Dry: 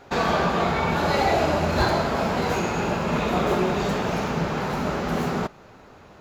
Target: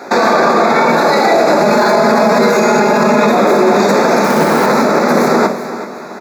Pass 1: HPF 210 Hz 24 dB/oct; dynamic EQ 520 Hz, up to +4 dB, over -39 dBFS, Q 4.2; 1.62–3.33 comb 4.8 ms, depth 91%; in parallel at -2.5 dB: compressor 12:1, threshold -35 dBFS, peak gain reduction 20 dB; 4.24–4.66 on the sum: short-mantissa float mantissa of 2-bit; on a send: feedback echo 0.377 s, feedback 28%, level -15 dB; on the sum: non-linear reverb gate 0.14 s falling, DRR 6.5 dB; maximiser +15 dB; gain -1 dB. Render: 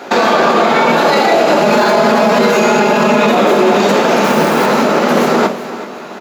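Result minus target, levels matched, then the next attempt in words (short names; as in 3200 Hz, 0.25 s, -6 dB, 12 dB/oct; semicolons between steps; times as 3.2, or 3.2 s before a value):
compressor: peak gain reduction +9 dB; 4000 Hz band +3.0 dB
HPF 210 Hz 24 dB/oct; dynamic EQ 520 Hz, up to +4 dB, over -39 dBFS, Q 4.2; Butterworth band-stop 3000 Hz, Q 2.2; 1.62–3.33 comb 4.8 ms, depth 91%; in parallel at -2.5 dB: compressor 12:1, threshold -25.5 dBFS, peak gain reduction 11.5 dB; 4.24–4.66 on the sum: short-mantissa float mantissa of 2-bit; on a send: feedback echo 0.377 s, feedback 28%, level -15 dB; on the sum: non-linear reverb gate 0.14 s falling, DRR 6.5 dB; maximiser +15 dB; gain -1 dB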